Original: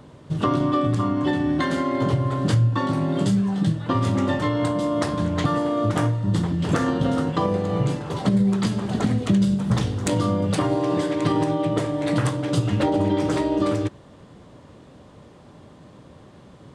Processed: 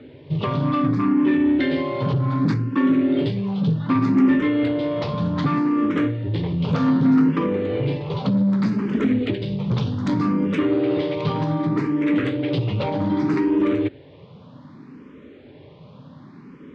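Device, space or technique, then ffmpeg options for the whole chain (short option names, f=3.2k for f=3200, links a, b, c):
barber-pole phaser into a guitar amplifier: -filter_complex "[0:a]asplit=2[a][b];[b]afreqshift=0.65[c];[a][c]amix=inputs=2:normalize=1,asoftclip=type=tanh:threshold=-20.5dB,highpass=87,equalizer=f=150:t=q:w=4:g=5,equalizer=f=260:t=q:w=4:g=9,equalizer=f=420:t=q:w=4:g=5,equalizer=f=710:t=q:w=4:g=-6,equalizer=f=2.3k:t=q:w=4:g=6,lowpass=f=4.5k:w=0.5412,lowpass=f=4.5k:w=1.3066,volume=3dB"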